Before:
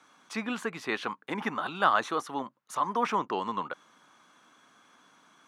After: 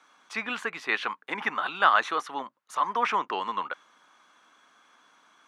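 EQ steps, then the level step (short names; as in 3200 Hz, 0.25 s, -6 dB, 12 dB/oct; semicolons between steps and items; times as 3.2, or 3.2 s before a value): HPF 600 Hz 6 dB/oct; dynamic EQ 2200 Hz, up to +6 dB, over -44 dBFS, Q 0.83; high shelf 7100 Hz -8 dB; +2.0 dB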